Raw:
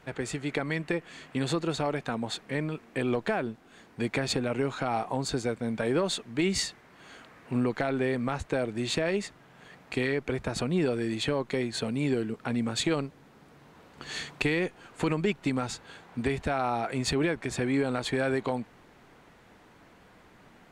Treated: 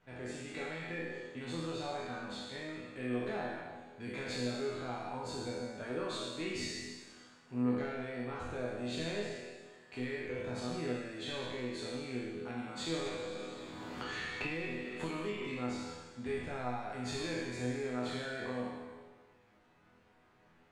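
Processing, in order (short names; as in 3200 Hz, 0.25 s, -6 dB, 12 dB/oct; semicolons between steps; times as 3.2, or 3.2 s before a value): spectral trails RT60 1.60 s; high shelf 8000 Hz -9.5 dB; resonator bank E2 major, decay 0.62 s; 13.06–15.42 three-band squash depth 100%; gain +2.5 dB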